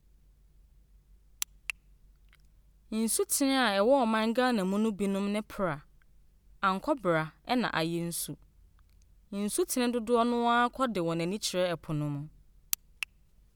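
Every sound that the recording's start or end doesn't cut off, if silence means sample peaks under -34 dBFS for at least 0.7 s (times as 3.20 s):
1.42–1.70 s
2.92–5.76 s
6.63–8.33 s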